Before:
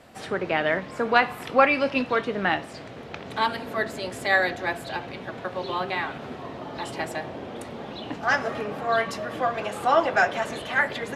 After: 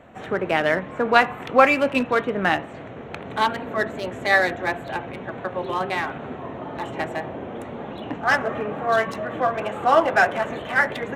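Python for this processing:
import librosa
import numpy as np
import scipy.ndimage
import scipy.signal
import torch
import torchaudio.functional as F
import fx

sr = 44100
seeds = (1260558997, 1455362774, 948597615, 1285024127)

y = fx.wiener(x, sr, points=9)
y = fx.wow_flutter(y, sr, seeds[0], rate_hz=2.1, depth_cents=29.0)
y = F.gain(torch.from_numpy(y), 3.5).numpy()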